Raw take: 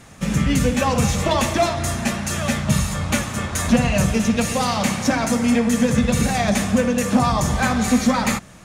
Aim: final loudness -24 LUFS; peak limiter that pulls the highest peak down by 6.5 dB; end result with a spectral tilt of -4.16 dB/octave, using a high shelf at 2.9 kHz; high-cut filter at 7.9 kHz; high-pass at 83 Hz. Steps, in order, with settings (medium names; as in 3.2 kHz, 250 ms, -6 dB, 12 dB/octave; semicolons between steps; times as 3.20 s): high-pass 83 Hz; low-pass 7.9 kHz; treble shelf 2.9 kHz +4.5 dB; trim -3 dB; peak limiter -14 dBFS